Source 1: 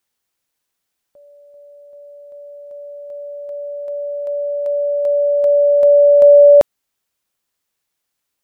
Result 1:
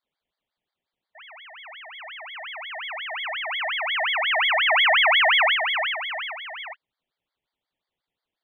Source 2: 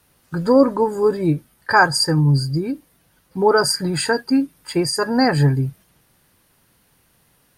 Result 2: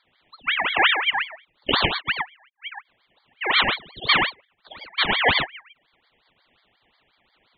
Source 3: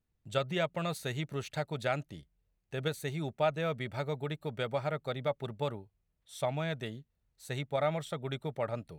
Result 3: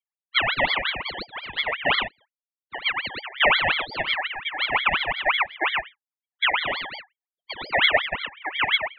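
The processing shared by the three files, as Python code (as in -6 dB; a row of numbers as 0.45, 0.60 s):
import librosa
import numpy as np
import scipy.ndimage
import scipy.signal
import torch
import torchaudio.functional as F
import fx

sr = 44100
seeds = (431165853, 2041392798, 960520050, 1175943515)

y = fx.spec_gate(x, sr, threshold_db=-15, keep='strong')
y = fx.over_compress(y, sr, threshold_db=-16.0, ratio=-0.5)
y = fx.brickwall_bandpass(y, sr, low_hz=420.0, high_hz=2200.0)
y = fx.rev_gated(y, sr, seeds[0], gate_ms=140, shape='rising', drr_db=2.0)
y = fx.ring_lfo(y, sr, carrier_hz=2000.0, swing_pct=40, hz=5.6)
y = y * 10.0 ** (-26 / 20.0) / np.sqrt(np.mean(np.square(y)))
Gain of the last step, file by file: -4.5, +3.5, +13.5 dB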